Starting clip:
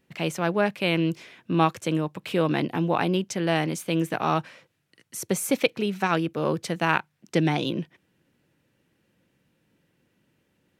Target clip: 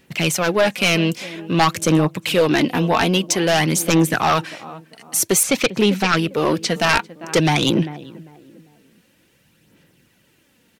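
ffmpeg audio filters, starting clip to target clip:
-filter_complex "[0:a]highshelf=f=2.2k:g=9,asplit=2[a][b];[b]adelay=397,lowpass=f=1k:p=1,volume=-18dB,asplit=2[c][d];[d]adelay=397,lowpass=f=1k:p=1,volume=0.4,asplit=2[e][f];[f]adelay=397,lowpass=f=1k:p=1,volume=0.4[g];[a][c][e][g]amix=inputs=4:normalize=0,aphaser=in_gain=1:out_gain=1:delay=4.5:decay=0.41:speed=0.51:type=sinusoidal,aeval=exprs='0.596*sin(PI/2*2.51*val(0)/0.596)':c=same,asettb=1/sr,asplit=3[h][i][j];[h]atrim=end=5.434[k];[i]atrim=start=5.43:end=6.74,asetpts=PTS-STARTPTS,afade=t=in:d=0.004:c=qsin,afade=t=out:st=1.306:d=0.004:c=qsin,acrossover=split=7000[l][m];[m]acompressor=threshold=-37dB:ratio=4:attack=1:release=60[n];[l][n]amix=inputs=2:normalize=0[o];[j]atrim=start=6.736[p];[k][o]acrossfade=d=0.004:c1=hsin:c2=qsin[q];[q][p]acrossfade=d=0.004:c1=qsin:c2=hsin,volume=-4.5dB"

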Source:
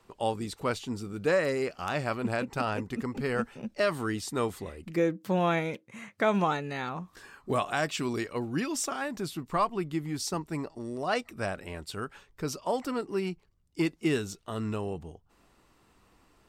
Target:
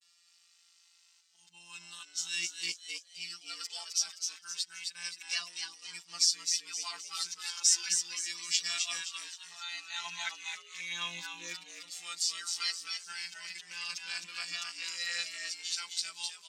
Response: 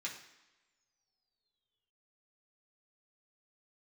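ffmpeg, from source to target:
-filter_complex "[0:a]areverse,firequalizer=gain_entry='entry(200,0);entry(300,-9);entry(470,-13);entry(870,-2);entry(2400,9);entry(5400,14);entry(12000,-11)':delay=0.05:min_phase=1,afftfilt=real='hypot(re,im)*cos(PI*b)':imag='0':win_size=1024:overlap=0.75,aderivative,asplit=2[a][b];[b]asplit=5[c][d][e][f][g];[c]adelay=261,afreqshift=120,volume=-4.5dB[h];[d]adelay=522,afreqshift=240,volume=-12.5dB[i];[e]adelay=783,afreqshift=360,volume=-20.4dB[j];[f]adelay=1044,afreqshift=480,volume=-28.4dB[k];[g]adelay=1305,afreqshift=600,volume=-36.3dB[l];[h][i][j][k][l]amix=inputs=5:normalize=0[m];[a][m]amix=inputs=2:normalize=0,asplit=2[n][o];[o]adelay=3.7,afreqshift=-0.34[p];[n][p]amix=inputs=2:normalize=1,volume=6.5dB"

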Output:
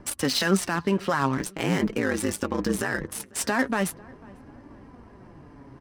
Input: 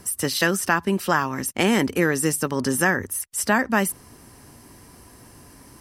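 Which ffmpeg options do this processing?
-filter_complex "[0:a]alimiter=limit=-14.5dB:level=0:latency=1:release=24,adynamicsmooth=sensitivity=6.5:basefreq=1.4k,asettb=1/sr,asplit=3[a][b][c];[a]atrim=end=1.374[d];[b]atrim=start=1.37:end=3.05,asetpts=PTS-STARTPTS,afade=t=in:d=0.004:c=qsin,afade=t=out:st=1.676:d=0.004:c=qsin,aeval=exprs='val(0)*sin(2*PI*55*n/s)':c=same[e];[c]atrim=start=3.046[f];[d][e]acrossfade=d=0.004:c1=hsin:c2=qsin[g];[g][f]acrossfade=d=0.004:c1=qsin:c2=hsin,flanger=delay=3.4:depth=4:regen=47:speed=0.43:shape=sinusoidal,asplit=2[h][i];[i]adelay=496,lowpass=f=1.7k:p=1,volume=-23.5dB,asplit=2[j][k];[k]adelay=496,lowpass=f=1.7k:p=1,volume=0.47,asplit=2[l][m];[m]adelay=496,lowpass=f=1.7k:p=1,volume=0.47[n];[j][l][n]amix=inputs=3:normalize=0[o];[h][o]amix=inputs=2:normalize=0,volume=6dB"

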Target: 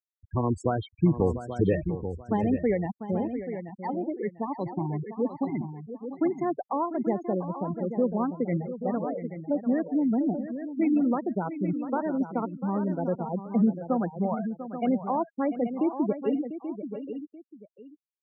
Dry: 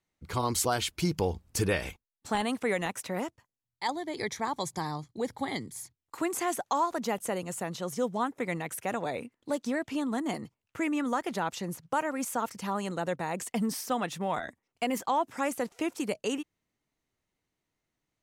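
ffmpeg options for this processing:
-filter_complex "[0:a]lowpass=11k,afftfilt=real='re*gte(hypot(re,im),0.0794)':imag='im*gte(hypot(re,im),0.0794)':win_size=1024:overlap=0.75,firequalizer=gain_entry='entry(210,0);entry(910,-10);entry(4300,-19)':delay=0.05:min_phase=1,asplit=2[a][b];[b]aecho=0:1:833:0.316[c];[a][c]amix=inputs=2:normalize=0,acrossover=split=130|3000[d][e][f];[d]acompressor=threshold=-40dB:ratio=10[g];[g][e][f]amix=inputs=3:normalize=0,highshelf=f=4k:g=-4,asplit=2[h][i];[i]aecho=0:1:695:0.251[j];[h][j]amix=inputs=2:normalize=0,volume=8dB"

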